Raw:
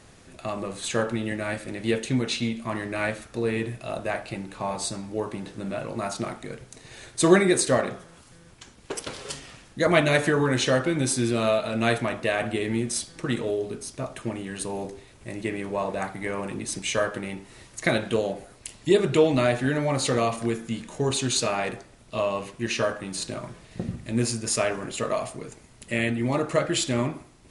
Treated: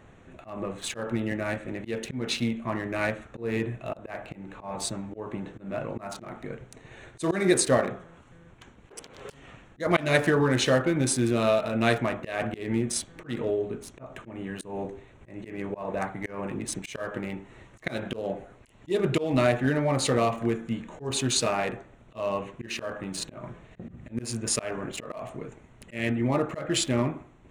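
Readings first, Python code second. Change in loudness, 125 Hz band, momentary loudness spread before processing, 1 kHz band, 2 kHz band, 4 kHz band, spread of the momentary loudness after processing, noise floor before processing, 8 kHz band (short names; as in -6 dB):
-2.0 dB, -1.5 dB, 15 LU, -2.5 dB, -3.5 dB, -2.5 dB, 19 LU, -52 dBFS, -2.5 dB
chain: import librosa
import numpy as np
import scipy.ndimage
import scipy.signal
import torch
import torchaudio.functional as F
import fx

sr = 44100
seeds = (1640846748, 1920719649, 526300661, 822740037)

y = fx.wiener(x, sr, points=9)
y = fx.auto_swell(y, sr, attack_ms=182.0)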